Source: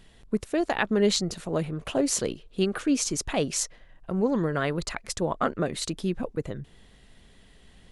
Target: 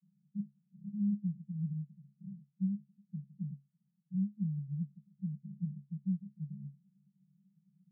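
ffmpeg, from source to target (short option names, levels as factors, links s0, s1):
-af "asuperpass=centerf=170:order=20:qfactor=2.5,volume=0.668"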